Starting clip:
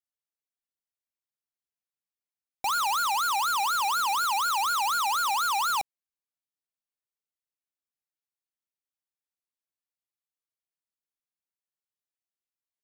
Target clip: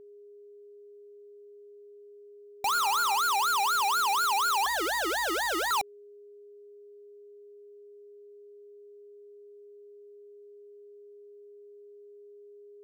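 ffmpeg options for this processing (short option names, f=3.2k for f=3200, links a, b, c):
-filter_complex "[0:a]aeval=exprs='val(0)+0.00398*sin(2*PI*410*n/s)':c=same,asettb=1/sr,asplit=3[a][b][c];[a]atrim=end=2.704[d];[b]atrim=start=2.7:end=3.18,asetpts=PTS-STARTPTS,afade=t=in:d=0.004:c=qsin,afade=t=out:st=0.476:d=0.004:c=qsin,bandreject=f=123.5:t=h:w=4,bandreject=f=247:t=h:w=4,bandreject=f=370.5:t=h:w=4,bandreject=f=494:t=h:w=4,bandreject=f=617.5:t=h:w=4,bandreject=f=741:t=h:w=4,bandreject=f=864.5:t=h:w=4,bandreject=f=988:t=h:w=4,bandreject=f=1.1115k:t=h:w=4,bandreject=f=1.235k:t=h:w=4,bandreject=f=1.3585k:t=h:w=4,bandreject=f=1.482k:t=h:w=4,bandreject=f=1.6055k:t=h:w=4,bandreject=f=1.729k:t=h:w=4[e];[c]atrim=start=3.176[f];[d][e]acrossfade=d=0.004:c1=hsin:c2=qsin[g];[g][f]acrossfade=d=0.004:c1=qsin:c2=hsin,asettb=1/sr,asplit=3[h][i][j];[h]atrim=end=4.664[k];[i]atrim=start=4.66:end=5.71,asetpts=PTS-STARTPTS,afade=t=in:d=0.004:c=qsin,afade=t=out:st=1.046:d=0.004:c=qsin,aeval=exprs='val(0)*sin(2*PI*460*n/s)':c=same[l];[j]atrim=start=5.706[m];[k][l]acrossfade=d=0.004:c1=hsin:c2=qsin[n];[n][m]acrossfade=d=0.004:c1=qsin:c2=hsin"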